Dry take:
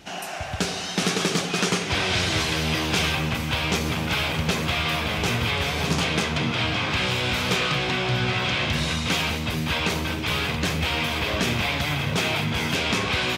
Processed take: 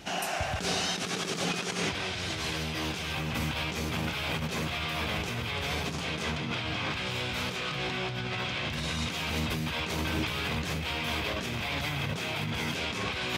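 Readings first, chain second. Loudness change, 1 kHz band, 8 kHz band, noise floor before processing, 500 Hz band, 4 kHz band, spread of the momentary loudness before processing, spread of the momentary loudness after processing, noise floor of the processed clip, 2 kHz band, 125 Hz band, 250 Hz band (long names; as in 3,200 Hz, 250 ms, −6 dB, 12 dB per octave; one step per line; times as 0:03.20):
−8.0 dB, −7.0 dB, −7.5 dB, −31 dBFS, −7.5 dB, −8.0 dB, 3 LU, 2 LU, −35 dBFS, −8.0 dB, −8.0 dB, −7.5 dB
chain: compressor whose output falls as the input rises −29 dBFS, ratio −1
level −3.5 dB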